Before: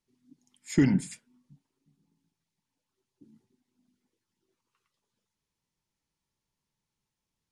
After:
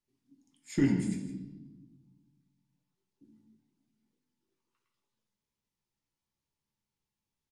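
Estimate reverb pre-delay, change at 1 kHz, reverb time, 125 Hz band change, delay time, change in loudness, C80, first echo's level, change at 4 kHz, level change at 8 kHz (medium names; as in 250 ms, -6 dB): 14 ms, -5.0 dB, 1.1 s, -4.0 dB, 161 ms, -5.5 dB, 8.0 dB, -12.5 dB, -4.5 dB, -6.0 dB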